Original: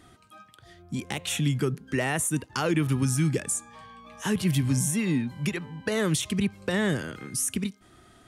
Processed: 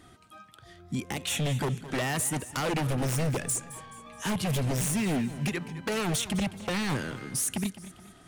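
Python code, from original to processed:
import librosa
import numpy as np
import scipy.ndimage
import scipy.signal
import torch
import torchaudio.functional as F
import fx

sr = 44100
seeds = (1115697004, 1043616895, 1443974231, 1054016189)

y = 10.0 ** (-23.0 / 20.0) * (np.abs((x / 10.0 ** (-23.0 / 20.0) + 3.0) % 4.0 - 2.0) - 1.0)
y = fx.echo_warbled(y, sr, ms=213, feedback_pct=43, rate_hz=2.8, cents=116, wet_db=-15)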